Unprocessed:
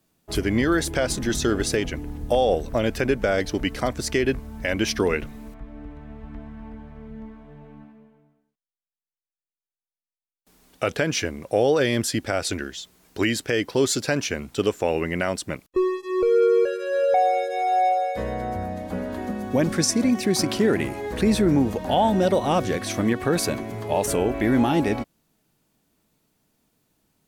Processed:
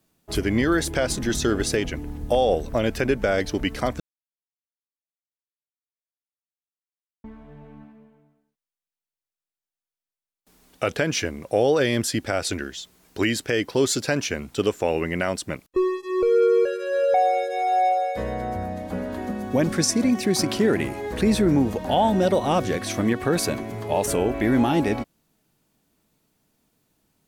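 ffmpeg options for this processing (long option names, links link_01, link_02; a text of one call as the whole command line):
ffmpeg -i in.wav -filter_complex "[0:a]asplit=3[link_01][link_02][link_03];[link_01]atrim=end=4,asetpts=PTS-STARTPTS,afade=type=out:start_time=3.996:duration=0.004:curve=hsin[link_04];[link_02]atrim=start=4:end=7.24,asetpts=PTS-STARTPTS,volume=0[link_05];[link_03]atrim=start=7.24,asetpts=PTS-STARTPTS,afade=type=in:duration=0.004:curve=hsin[link_06];[link_04][link_05][link_06]concat=n=3:v=0:a=1" out.wav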